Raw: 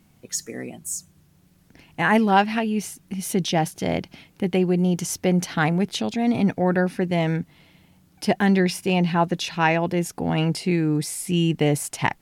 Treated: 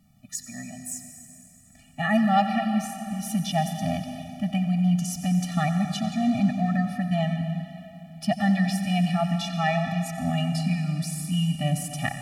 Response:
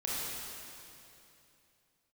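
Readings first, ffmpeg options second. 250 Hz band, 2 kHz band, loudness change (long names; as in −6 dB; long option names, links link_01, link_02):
−2.0 dB, −6.0 dB, −3.0 dB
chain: -filter_complex "[0:a]asplit=2[link_01][link_02];[1:a]atrim=start_sample=2205,adelay=90[link_03];[link_02][link_03]afir=irnorm=-1:irlink=0,volume=-12dB[link_04];[link_01][link_04]amix=inputs=2:normalize=0,afftfilt=real='re*eq(mod(floor(b*sr/1024/280),2),0)':imag='im*eq(mod(floor(b*sr/1024/280),2),0)':win_size=1024:overlap=0.75,volume=-2dB"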